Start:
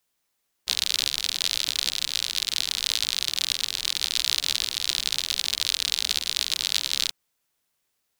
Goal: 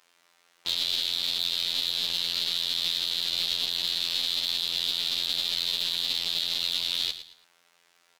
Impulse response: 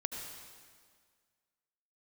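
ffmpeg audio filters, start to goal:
-filter_complex "[0:a]aemphasis=mode=reproduction:type=50kf,acrossover=split=2300|6000[link_01][link_02][link_03];[link_01]acompressor=threshold=-49dB:ratio=4[link_04];[link_02]acompressor=threshold=-35dB:ratio=4[link_05];[link_03]acompressor=threshold=-46dB:ratio=4[link_06];[link_04][link_05][link_06]amix=inputs=3:normalize=0,afftfilt=real='hypot(re,im)*cos(PI*b)':imag='0':win_size=2048:overlap=0.75,asplit=2[link_07][link_08];[link_08]aeval=exprs='sgn(val(0))*max(abs(val(0))-0.0075,0)':channel_layout=same,volume=-6dB[link_09];[link_07][link_09]amix=inputs=2:normalize=0,asplit=2[link_10][link_11];[link_11]highpass=frequency=720:poles=1,volume=28dB,asoftclip=type=tanh:threshold=-11.5dB[link_12];[link_10][link_12]amix=inputs=2:normalize=0,lowpass=frequency=6400:poles=1,volume=-6dB,asplit=2[link_13][link_14];[link_14]aecho=0:1:111|222|333:0.251|0.0754|0.0226[link_15];[link_13][link_15]amix=inputs=2:normalize=0,volume=1dB"

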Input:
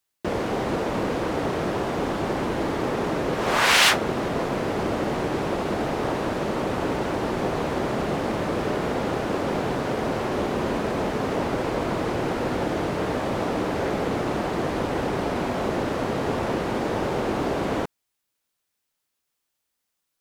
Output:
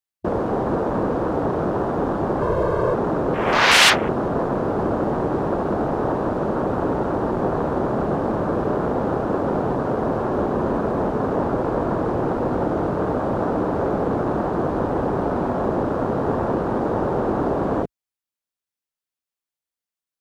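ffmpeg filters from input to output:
ffmpeg -i in.wav -filter_complex "[0:a]afwtdn=0.0282,asettb=1/sr,asplit=3[link_01][link_02][link_03];[link_01]atrim=end=2.414[link_04];[link_02]atrim=start=2.41:end=2.94,asetpts=PTS-STARTPTS,afade=type=in:duration=0.004:curve=qsin,afade=type=out:start_time=0.526:duration=0.004:curve=qsin,aecho=1:1:1.9:0.91,atrim=end_sample=23373[link_05];[link_03]atrim=start=2.936[link_06];[link_04][link_05]acrossfade=duration=0.004:curve1=hsin:curve2=qsin[link_07];[link_07][link_06]acrossfade=duration=0.004:curve1=qsin:curve2=hsin,volume=4dB" out.wav

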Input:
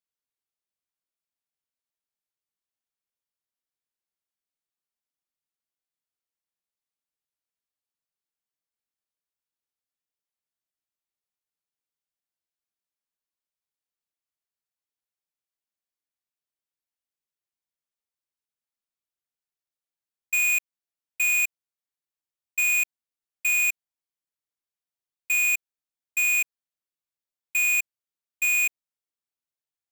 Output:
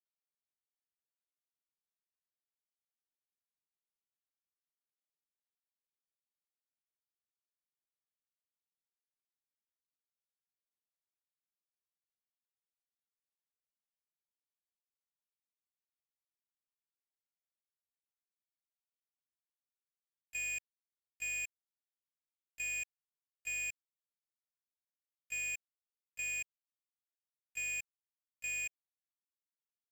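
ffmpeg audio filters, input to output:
ffmpeg -i in.wav -filter_complex "[0:a]aeval=exprs='val(0)+0.5*0.00335*sgn(val(0))':channel_layout=same,asplit=2[link_01][link_02];[link_02]acompressor=threshold=-36dB:ratio=10,volume=0dB[link_03];[link_01][link_03]amix=inputs=2:normalize=0,equalizer=frequency=3400:width_type=o:width=1.6:gain=-10,acrossover=split=5200[link_04][link_05];[link_05]acompressor=threshold=-44dB:ratio=4:attack=1:release=60[link_06];[link_04][link_06]amix=inputs=2:normalize=0,asplit=3[link_07][link_08][link_09];[link_07]bandpass=frequency=530:width_type=q:width=8,volume=0dB[link_10];[link_08]bandpass=frequency=1840:width_type=q:width=8,volume=-6dB[link_11];[link_09]bandpass=frequency=2480:width_type=q:width=8,volume=-9dB[link_12];[link_10][link_11][link_12]amix=inputs=3:normalize=0,asplit=2[link_13][link_14];[link_14]adelay=19,volume=-5dB[link_15];[link_13][link_15]amix=inputs=2:normalize=0,aeval=exprs='val(0)+0.000562*(sin(2*PI*50*n/s)+sin(2*PI*2*50*n/s)/2+sin(2*PI*3*50*n/s)/3+sin(2*PI*4*50*n/s)/4+sin(2*PI*5*50*n/s)/5)':channel_layout=same,equalizer=frequency=350:width_type=o:width=1:gain=-9.5,bandreject=frequency=3600:width=17,acrusher=bits=4:mix=0:aa=0.5,volume=1dB" out.wav

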